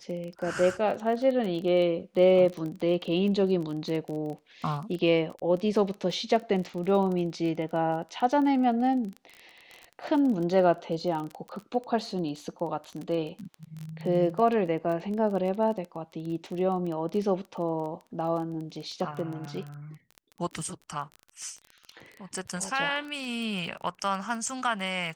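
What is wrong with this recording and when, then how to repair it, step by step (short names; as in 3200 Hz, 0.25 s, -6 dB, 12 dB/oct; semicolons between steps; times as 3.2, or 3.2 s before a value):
crackle 22/s -33 dBFS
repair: de-click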